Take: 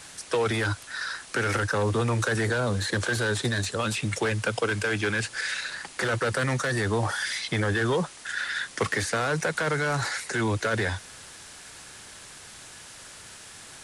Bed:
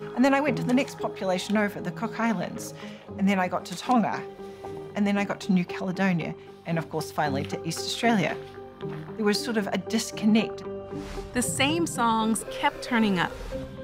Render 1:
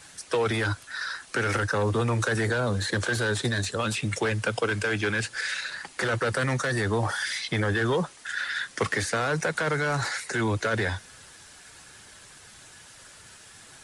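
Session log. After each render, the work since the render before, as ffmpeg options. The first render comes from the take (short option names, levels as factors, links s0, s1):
-af "afftdn=nr=6:nf=-46"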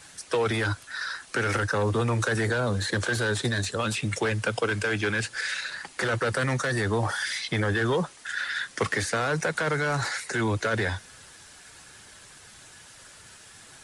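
-af anull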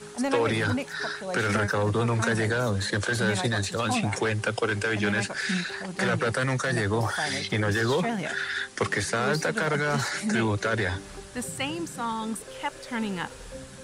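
-filter_complex "[1:a]volume=0.447[s0];[0:a][s0]amix=inputs=2:normalize=0"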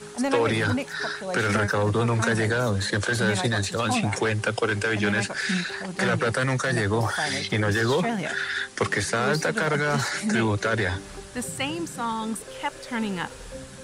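-af "volume=1.26"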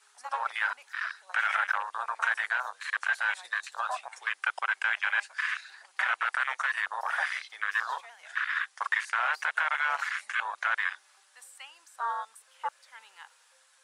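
-af "highpass=f=850:w=0.5412,highpass=f=850:w=1.3066,afwtdn=0.0501"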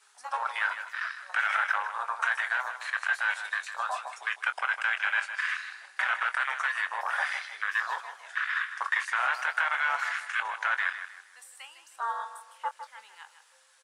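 -filter_complex "[0:a]asplit=2[s0][s1];[s1]adelay=23,volume=0.282[s2];[s0][s2]amix=inputs=2:normalize=0,aecho=1:1:156|312|468|624:0.299|0.0985|0.0325|0.0107"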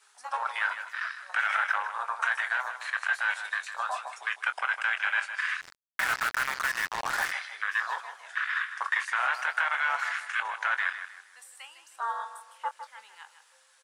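-filter_complex "[0:a]asettb=1/sr,asplit=3[s0][s1][s2];[s0]atrim=end=5.614[s3];[s1]atrim=start=5.61:end=7.32,asetpts=PTS-STARTPTS,afade=t=in:d=0.004:c=qsin,afade=t=out:st=1.706:d=0.004:c=qsin,acrusher=bits=4:mix=0:aa=0.5[s4];[s2]atrim=start=7.316[s5];[s3][s4]acrossfade=d=0.004:c1=hsin:c2=qsin[s6];[s6][s5]acrossfade=d=0.004:c1=qsin:c2=hsin"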